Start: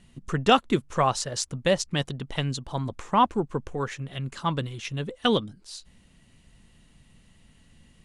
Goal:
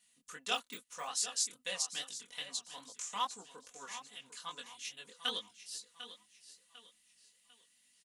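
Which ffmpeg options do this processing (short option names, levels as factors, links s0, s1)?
-filter_complex "[0:a]asettb=1/sr,asplit=3[s0][s1][s2];[s0]atrim=end=2.964[s3];[s1]atrim=start=2.96:end=3.46,asetpts=PTS-STARTPTS,afade=t=in:d=0.004:c=qsin,afade=t=out:st=0.496:d=0.004:c=qsin,equalizer=f=7000:t=o:w=1.1:g=13[s4];[s2]atrim=start=3.456[s5];[s3][s4]acrossfade=d=0.004:c1=hsin:c2=qsin[s6];[s6][s5]acrossfade=d=0.004:c1=qsin:c2=hsin,aecho=1:1:748|1496|2244|2992:0.237|0.0854|0.0307|0.0111,asettb=1/sr,asplit=3[s7][s8][s9];[s7]atrim=end=0.544[s10];[s8]atrim=start=0.54:end=1.07,asetpts=PTS-STARTPTS,afade=t=in:d=0.004:c=qsin,afade=t=out:st=0.526:d=0.004:c=qsin,deesser=0.95[s11];[s9]atrim=start=1.066[s12];[s10][s11]acrossfade=d=0.004:c1=hsin:c2=qsin[s13];[s13][s12]acrossfade=d=0.004:c1=qsin:c2=hsin,aderivative,aecho=1:1:4.1:0.74,flanger=delay=19:depth=7:speed=2.4"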